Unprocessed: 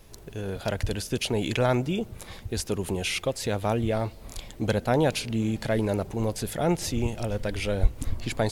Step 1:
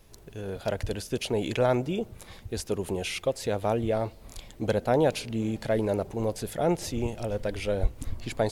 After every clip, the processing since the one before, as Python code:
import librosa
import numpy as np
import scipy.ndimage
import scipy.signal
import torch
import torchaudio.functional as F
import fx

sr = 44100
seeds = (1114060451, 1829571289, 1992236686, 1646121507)

y = fx.dynamic_eq(x, sr, hz=530.0, q=0.82, threshold_db=-36.0, ratio=4.0, max_db=6)
y = y * librosa.db_to_amplitude(-4.5)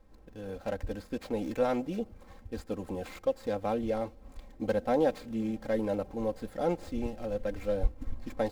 y = scipy.signal.medfilt(x, 15)
y = y + 0.75 * np.pad(y, (int(3.8 * sr / 1000.0), 0))[:len(y)]
y = y * librosa.db_to_amplitude(-5.5)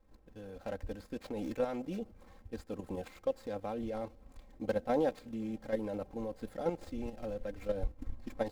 y = fx.level_steps(x, sr, step_db=9)
y = y * librosa.db_to_amplitude(-1.5)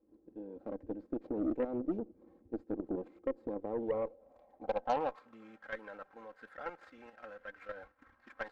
y = fx.filter_sweep_bandpass(x, sr, from_hz=330.0, to_hz=1500.0, start_s=3.48, end_s=5.61, q=4.1)
y = fx.cheby_harmonics(y, sr, harmonics=(8,), levels_db=(-24,), full_scale_db=-29.0)
y = y * librosa.db_to_amplitude(9.5)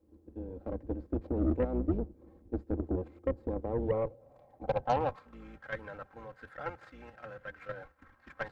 y = fx.octave_divider(x, sr, octaves=2, level_db=1.0)
y = y * librosa.db_to_amplitude(3.0)